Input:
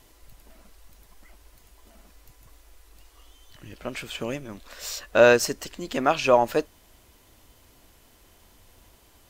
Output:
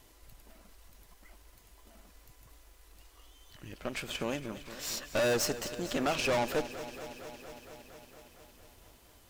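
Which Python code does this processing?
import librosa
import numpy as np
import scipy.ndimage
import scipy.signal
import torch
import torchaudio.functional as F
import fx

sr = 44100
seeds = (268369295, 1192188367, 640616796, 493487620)

y = fx.tube_stage(x, sr, drive_db=27.0, bias=0.75)
y = fx.echo_crushed(y, sr, ms=230, feedback_pct=80, bits=10, wet_db=-14)
y = F.gain(torch.from_numpy(y), 1.0).numpy()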